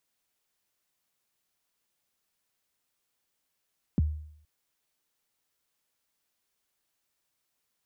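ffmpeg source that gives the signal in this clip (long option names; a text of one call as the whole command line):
ffmpeg -f lavfi -i "aevalsrc='0.119*pow(10,-3*t/0.66)*sin(2*PI*(280*0.022/log(76/280)*(exp(log(76/280)*min(t,0.022)/0.022)-1)+76*max(t-0.022,0)))':duration=0.47:sample_rate=44100" out.wav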